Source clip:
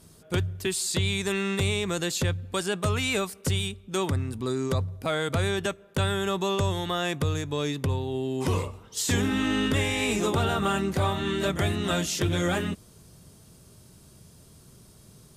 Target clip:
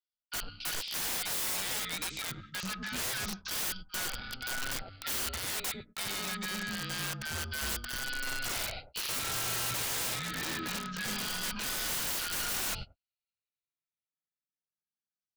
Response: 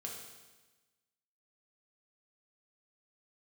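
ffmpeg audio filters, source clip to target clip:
-filter_complex "[0:a]afftfilt=real='re*pow(10,22/40*sin(2*PI*(0.61*log(max(b,1)*sr/1024/100)/log(2)-(-0.25)*(pts-256)/sr)))':imag='im*pow(10,22/40*sin(2*PI*(0.61*log(max(b,1)*sr/1024/100)/log(2)-(-0.25)*(pts-256)/sr)))':win_size=1024:overlap=0.75,agate=range=0.002:threshold=0.0126:ratio=16:detection=peak,aemphasis=mode=production:type=cd,areverse,acompressor=threshold=0.0501:ratio=20,areverse,asoftclip=type=tanh:threshold=0.0335,aexciter=amount=11.6:drive=5.4:freq=2800,highpass=f=220:t=q:w=0.5412,highpass=f=220:t=q:w=1.307,lowpass=f=3200:t=q:w=0.5176,lowpass=f=3200:t=q:w=0.7071,lowpass=f=3200:t=q:w=1.932,afreqshift=350,aeval=exprs='val(0)*sin(2*PI*730*n/s)':c=same,acrossover=split=830[s0][s1];[s0]adelay=90[s2];[s2][s1]amix=inputs=2:normalize=0,aeval=exprs='(mod(31.6*val(0)+1,2)-1)/31.6':c=same,volume=1.26"

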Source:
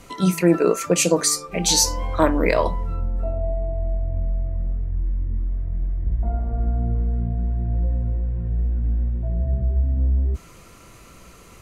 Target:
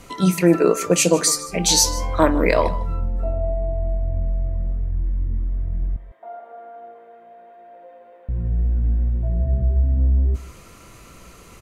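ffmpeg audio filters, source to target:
-filter_complex "[0:a]asettb=1/sr,asplit=3[s0][s1][s2];[s0]atrim=end=5.964[s3];[s1]atrim=start=5.96:end=8.29,asetpts=PTS-STARTPTS,afade=t=in:d=0.004:c=qsin,afade=t=out:st=2.326:d=0.004:c=qsin,highpass=f=540:w=0.5412,highpass=f=540:w=1.3066[s4];[s2]atrim=start=8.286[s5];[s3][s4]acrossfade=d=0.004:c1=hsin:c2=qsin[s6];[s6][s5]acrossfade=d=0.004:c1=qsin:c2=hsin,aecho=1:1:153:0.133,volume=1.19"

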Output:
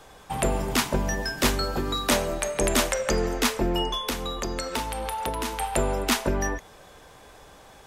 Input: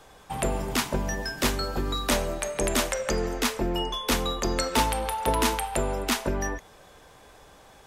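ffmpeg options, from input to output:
-filter_complex "[0:a]asettb=1/sr,asplit=3[s0][s1][s2];[s0]atrim=end=1.764[s3];[s1]atrim=start=1.76:end=2.32,asetpts=PTS-STARTPTS,afade=t=in:d=0.004:c=qsin,afade=t=out:st=0.556:d=0.004:c=qsin,highpass=f=76:p=1[s4];[s2]atrim=start=2.316[s5];[s3][s4]acrossfade=d=0.004:c1=hsin:c2=qsin[s6];[s6][s5]acrossfade=d=0.004:c1=qsin:c2=hsin,asettb=1/sr,asplit=3[s7][s8][s9];[s7]atrim=end=4.024[s10];[s8]atrim=start=4.02:end=5.6,asetpts=PTS-STARTPTS,afade=t=in:d=0.004:c=qsin,afade=t=out:st=1.576:d=0.004:c=qsin,acompressor=threshold=0.0355:ratio=6[s11];[s9]atrim=start=5.596[s12];[s10][s11]acrossfade=d=0.004:c1=hsin:c2=qsin[s13];[s13][s12]acrossfade=d=0.004:c1=qsin:c2=hsin,volume=1.33"

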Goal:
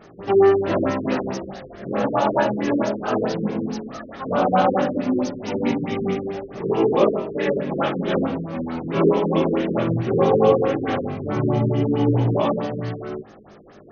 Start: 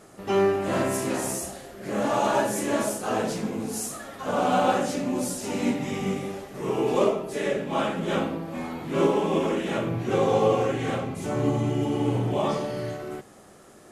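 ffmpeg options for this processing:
-af "flanger=delay=17.5:depth=7:speed=0.16,afftfilt=real='re*lt(b*sr/1024,480*pow(6700/480,0.5+0.5*sin(2*PI*4.6*pts/sr)))':imag='im*lt(b*sr/1024,480*pow(6700/480,0.5+0.5*sin(2*PI*4.6*pts/sr)))':win_size=1024:overlap=0.75,volume=2.51"

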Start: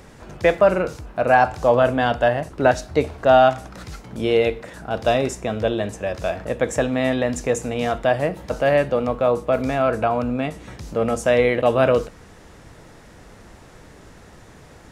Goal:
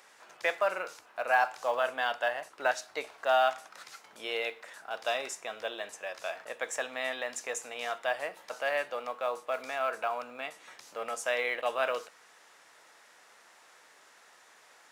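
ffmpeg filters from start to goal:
-filter_complex "[0:a]highpass=950,asplit=2[s0][s1];[s1]acrusher=bits=4:mode=log:mix=0:aa=0.000001,volume=0.251[s2];[s0][s2]amix=inputs=2:normalize=0,volume=0.398"

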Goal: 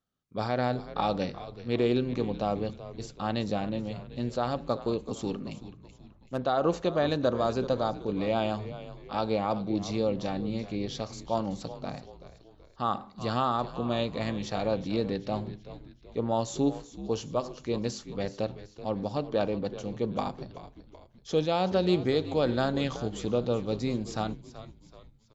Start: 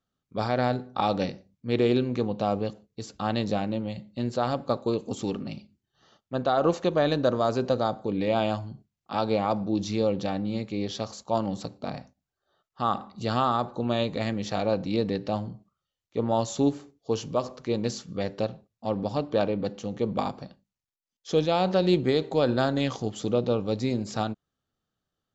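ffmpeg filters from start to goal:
-filter_complex "[0:a]asettb=1/sr,asplit=3[s0][s1][s2];[s0]atrim=end=5.574[s3];[s1]atrim=start=5.57:end=6.44,asetpts=PTS-STARTPTS,afade=t=in:d=0.004:c=qsin,afade=t=out:st=0.866:d=0.004:c=qsin,adynamicsmooth=sensitivity=8:basefreq=800[s4];[s2]atrim=start=6.436[s5];[s3][s4]acrossfade=d=0.004:c1=hsin:c2=qsin[s6];[s6][s5]acrossfade=d=0.004:c1=qsin:c2=hsin,asplit=5[s7][s8][s9][s10][s11];[s8]adelay=379,afreqshift=-81,volume=0.2[s12];[s9]adelay=758,afreqshift=-162,volume=0.0923[s13];[s10]adelay=1137,afreqshift=-243,volume=0.0422[s14];[s11]adelay=1516,afreqshift=-324,volume=0.0195[s15];[s7][s12][s13][s14][s15]amix=inputs=5:normalize=0,volume=0.708"

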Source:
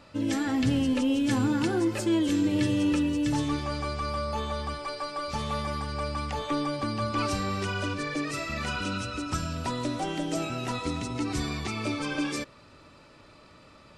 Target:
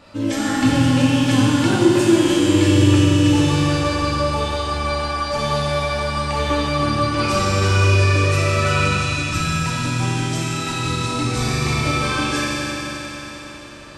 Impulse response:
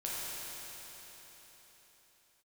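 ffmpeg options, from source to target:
-filter_complex "[0:a]asettb=1/sr,asplit=3[s0][s1][s2];[s0]atrim=end=9.024[s3];[s1]atrim=start=9.02:end=11.07,asetpts=PTS-STARTPTS,afade=t=in:d=0.004:c=qsin,afade=t=out:st=2.046:d=0.004:c=qsin,equalizer=f=590:t=o:w=1.1:g=-13[s4];[s2]atrim=start=11.066[s5];[s3][s4]acrossfade=d=0.004:c1=hsin:c2=qsin[s6];[s6][s5]acrossfade=d=0.004:c1=qsin:c2=hsin[s7];[1:a]atrim=start_sample=2205[s8];[s7][s8]afir=irnorm=-1:irlink=0,volume=2.51"

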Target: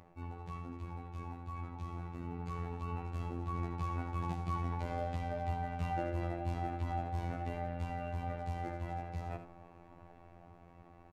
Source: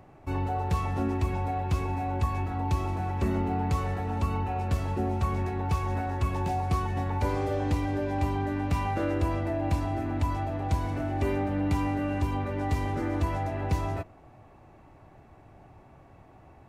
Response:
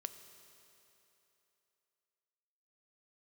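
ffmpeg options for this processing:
-filter_complex "[0:a]highshelf=f=6600:g=-9,bandreject=f=81.89:t=h:w=4,bandreject=f=163.78:t=h:w=4,bandreject=f=245.67:t=h:w=4,bandreject=f=327.56:t=h:w=4,bandreject=f=409.45:t=h:w=4,bandreject=f=491.34:t=h:w=4,bandreject=f=573.23:t=h:w=4,bandreject=f=655.12:t=h:w=4,bandreject=f=737.01:t=h:w=4,bandreject=f=818.9:t=h:w=4,bandreject=f=900.79:t=h:w=4,bandreject=f=982.68:t=h:w=4,bandreject=f=1064.57:t=h:w=4,bandreject=f=1146.46:t=h:w=4,bandreject=f=1228.35:t=h:w=4,bandreject=f=1310.24:t=h:w=4,bandreject=f=1392.13:t=h:w=4,bandreject=f=1474.02:t=h:w=4,bandreject=f=1555.91:t=h:w=4,bandreject=f=1637.8:t=h:w=4,bandreject=f=1719.69:t=h:w=4,bandreject=f=1801.58:t=h:w=4,bandreject=f=1883.47:t=h:w=4,bandreject=f=1965.36:t=h:w=4,bandreject=f=2047.25:t=h:w=4,bandreject=f=2129.14:t=h:w=4,bandreject=f=2211.03:t=h:w=4,bandreject=f=2292.92:t=h:w=4,bandreject=f=2374.81:t=h:w=4,bandreject=f=2456.7:t=h:w=4,bandreject=f=2538.59:t=h:w=4,bandreject=f=2620.48:t=h:w=4,bandreject=f=2702.37:t=h:w=4,bandreject=f=2784.26:t=h:w=4,bandreject=f=2866.15:t=h:w=4,bandreject=f=2948.04:t=h:w=4,bandreject=f=3029.93:t=h:w=4,bandreject=f=3111.82:t=h:w=4,atempo=1.5,areverse,acompressor=threshold=0.0141:ratio=10,areverse,afftfilt=real='hypot(re,im)*cos(PI*b)':imag='0':win_size=2048:overlap=0.75,dynaudnorm=f=700:g=9:m=2.51,asplit=2[s0][s1];[s1]aecho=0:1:76:0.299[s2];[s0][s2]amix=inputs=2:normalize=0"

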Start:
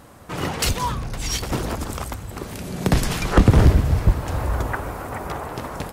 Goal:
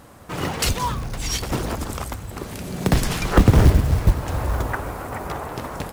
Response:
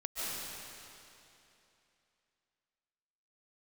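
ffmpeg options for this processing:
-af "acrusher=bits=6:mode=log:mix=0:aa=0.000001"

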